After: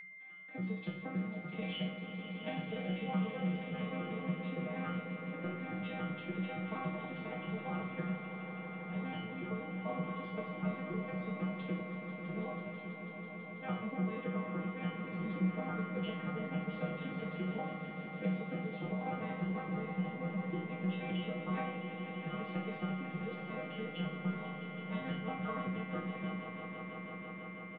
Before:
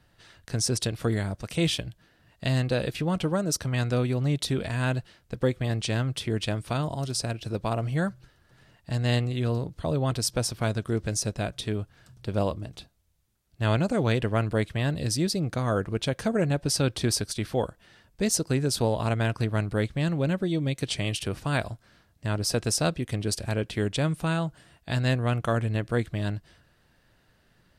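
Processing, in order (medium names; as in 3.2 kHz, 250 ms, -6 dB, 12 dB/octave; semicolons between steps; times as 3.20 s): vocoder on a broken chord major triad, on F3, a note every 95 ms; comb 6.4 ms, depth 76%; compression, threshold -27 dBFS, peak gain reduction 13 dB; rippled Chebyshev low-pass 3.6 kHz, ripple 3 dB; chord resonator B2 major, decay 0.62 s; echo with a slow build-up 164 ms, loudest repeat 5, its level -11.5 dB; whistle 2.1 kHz -59 dBFS; on a send at -4.5 dB: reverberation RT60 0.40 s, pre-delay 5 ms; on the sum: trim +14 dB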